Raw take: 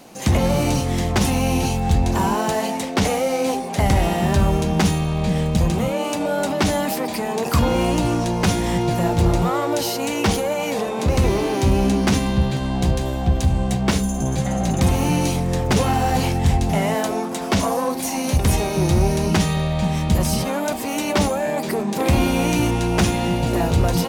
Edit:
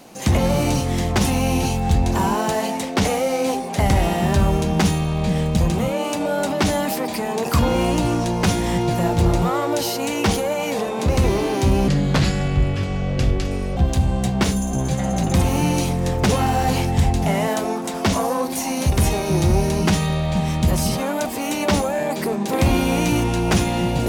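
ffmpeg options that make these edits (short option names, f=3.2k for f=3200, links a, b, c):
-filter_complex "[0:a]asplit=3[a][b][c];[a]atrim=end=11.884[d];[b]atrim=start=11.88:end=13.24,asetpts=PTS-STARTPTS,asetrate=31752,aresample=44100[e];[c]atrim=start=13.236[f];[d][e]acrossfade=d=0.004:c1=hsin:c2=hsin[g];[g][f]acrossfade=d=0.004:c1=hsin:c2=hsin"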